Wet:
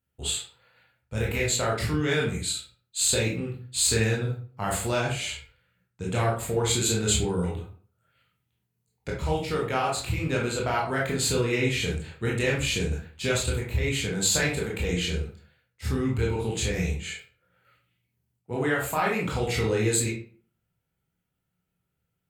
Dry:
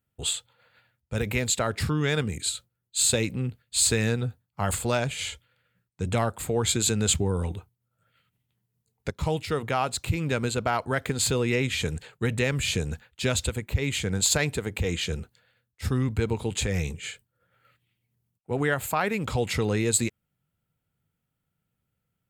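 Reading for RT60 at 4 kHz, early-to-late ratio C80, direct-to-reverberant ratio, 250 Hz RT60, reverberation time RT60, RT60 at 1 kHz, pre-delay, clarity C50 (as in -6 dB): 0.30 s, 10.5 dB, -4.0 dB, 0.50 s, 0.45 s, 0.45 s, 18 ms, 4.5 dB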